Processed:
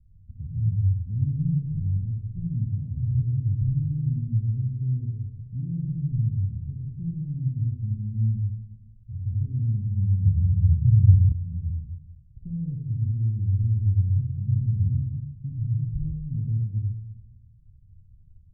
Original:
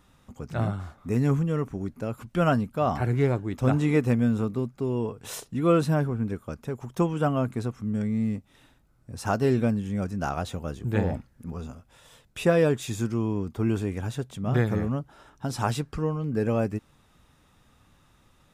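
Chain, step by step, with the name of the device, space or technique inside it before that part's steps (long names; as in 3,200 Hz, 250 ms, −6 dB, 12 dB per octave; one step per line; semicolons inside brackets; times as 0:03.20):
club heard from the street (brickwall limiter −19.5 dBFS, peak gain reduction 9 dB; low-pass filter 120 Hz 24 dB per octave; convolution reverb RT60 1.0 s, pre-delay 47 ms, DRR −0.5 dB)
0:10.25–0:11.32: parametric band 110 Hz +8 dB 1.6 octaves
level +7 dB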